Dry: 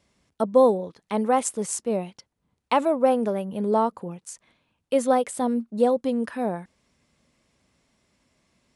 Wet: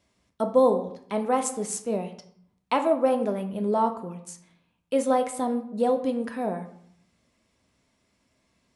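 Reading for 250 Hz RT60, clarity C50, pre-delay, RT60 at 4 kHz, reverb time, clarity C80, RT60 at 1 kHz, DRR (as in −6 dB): 0.85 s, 11.0 dB, 3 ms, 0.45 s, 0.65 s, 14.0 dB, 0.70 s, 5.5 dB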